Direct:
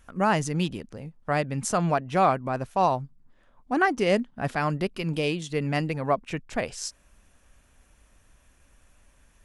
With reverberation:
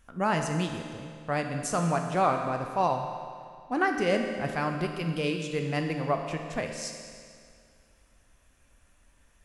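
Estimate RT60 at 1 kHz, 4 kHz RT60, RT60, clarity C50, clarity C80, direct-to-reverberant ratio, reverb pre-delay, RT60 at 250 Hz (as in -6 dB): 2.2 s, 2.1 s, 2.2 s, 5.0 dB, 6.5 dB, 3.5 dB, 14 ms, 2.2 s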